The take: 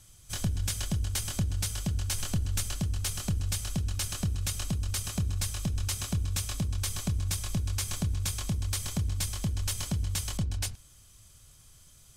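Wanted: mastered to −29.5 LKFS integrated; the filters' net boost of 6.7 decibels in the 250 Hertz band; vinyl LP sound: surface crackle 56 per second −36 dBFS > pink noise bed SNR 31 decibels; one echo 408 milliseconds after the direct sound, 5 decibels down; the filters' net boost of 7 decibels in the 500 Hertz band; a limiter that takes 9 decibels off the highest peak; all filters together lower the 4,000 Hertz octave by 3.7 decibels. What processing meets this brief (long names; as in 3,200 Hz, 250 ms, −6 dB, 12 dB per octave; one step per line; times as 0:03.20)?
parametric band 250 Hz +9 dB
parametric band 500 Hz +6.5 dB
parametric band 4,000 Hz −5 dB
brickwall limiter −22.5 dBFS
single-tap delay 408 ms −5 dB
surface crackle 56 per second −36 dBFS
pink noise bed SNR 31 dB
level +2 dB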